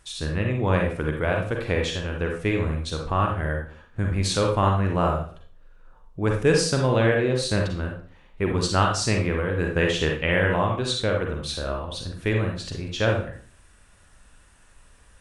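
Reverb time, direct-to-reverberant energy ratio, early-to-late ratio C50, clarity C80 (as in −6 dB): 0.45 s, 1.0 dB, 4.0 dB, 9.5 dB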